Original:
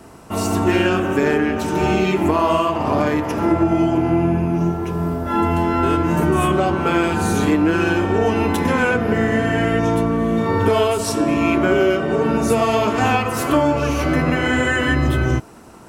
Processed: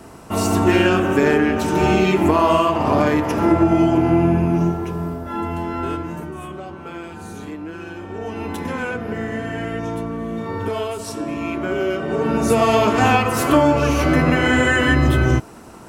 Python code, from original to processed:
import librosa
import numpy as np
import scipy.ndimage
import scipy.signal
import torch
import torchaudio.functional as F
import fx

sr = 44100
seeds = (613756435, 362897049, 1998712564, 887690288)

y = fx.gain(x, sr, db=fx.line((4.56, 1.5), (5.34, -7.0), (5.92, -7.0), (6.33, -15.5), (7.94, -15.5), (8.54, -8.0), (11.57, -8.0), (12.68, 2.0)))